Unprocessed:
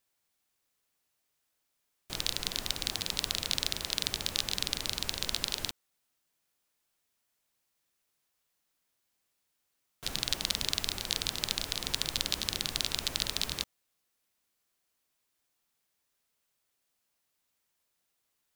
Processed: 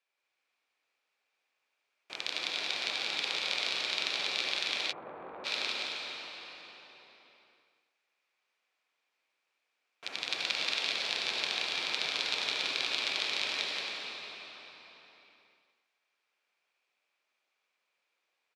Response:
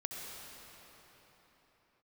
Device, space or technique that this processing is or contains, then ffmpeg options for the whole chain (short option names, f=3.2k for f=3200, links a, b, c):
station announcement: -filter_complex "[0:a]highpass=450,lowpass=3.8k,equalizer=f=2.4k:t=o:w=0.21:g=9.5,aecho=1:1:174.9|271.1:0.562|0.355[a];[1:a]atrim=start_sample=2205[b];[a][b]afir=irnorm=-1:irlink=0,asplit=3[c][d][e];[c]afade=t=out:st=4.91:d=0.02[f];[d]lowpass=f=1.2k:w=0.5412,lowpass=f=1.2k:w=1.3066,afade=t=in:st=4.91:d=0.02,afade=t=out:st=5.44:d=0.02[g];[e]afade=t=in:st=5.44:d=0.02[h];[f][g][h]amix=inputs=3:normalize=0,volume=1.5dB"